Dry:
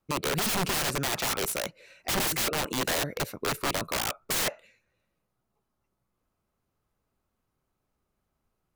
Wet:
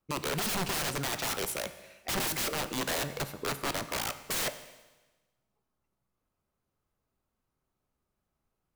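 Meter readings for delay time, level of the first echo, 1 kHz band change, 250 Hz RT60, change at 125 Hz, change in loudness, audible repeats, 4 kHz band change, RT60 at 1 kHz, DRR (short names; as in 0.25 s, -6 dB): none, none, -3.5 dB, 1.2 s, -3.5 dB, -4.0 dB, none, -4.0 dB, 1.2 s, 11.0 dB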